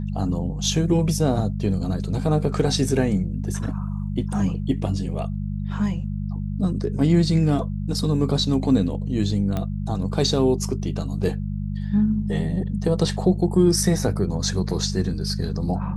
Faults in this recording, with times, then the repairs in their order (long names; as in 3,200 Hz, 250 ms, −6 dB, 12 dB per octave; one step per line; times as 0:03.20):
mains hum 50 Hz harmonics 4 −27 dBFS
0:09.57: click −14 dBFS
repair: click removal
hum removal 50 Hz, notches 4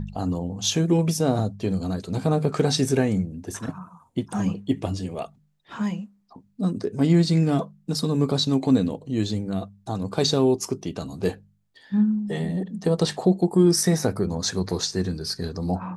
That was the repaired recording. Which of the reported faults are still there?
none of them is left